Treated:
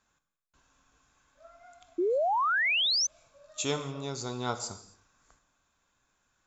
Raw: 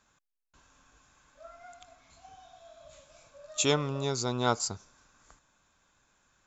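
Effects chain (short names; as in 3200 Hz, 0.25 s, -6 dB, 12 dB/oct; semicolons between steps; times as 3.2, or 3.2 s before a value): non-linear reverb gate 0.31 s falling, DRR 8.5 dB; painted sound rise, 1.98–3.07, 330–6300 Hz -21 dBFS; gain -5.5 dB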